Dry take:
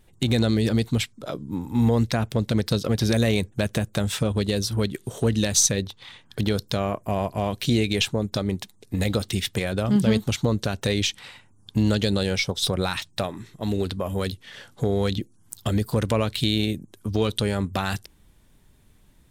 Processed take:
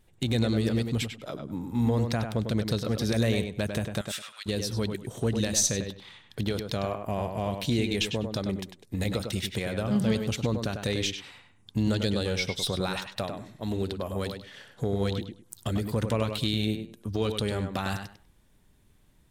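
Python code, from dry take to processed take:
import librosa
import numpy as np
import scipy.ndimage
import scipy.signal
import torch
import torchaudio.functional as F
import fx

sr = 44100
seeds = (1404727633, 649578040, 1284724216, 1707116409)

p1 = fx.highpass(x, sr, hz=1300.0, slope=24, at=(4.01, 4.46))
p2 = p1 + fx.echo_tape(p1, sr, ms=100, feedback_pct=24, wet_db=-5.0, lp_hz=3000.0, drive_db=6.0, wow_cents=39, dry=0)
y = p2 * 10.0 ** (-5.5 / 20.0)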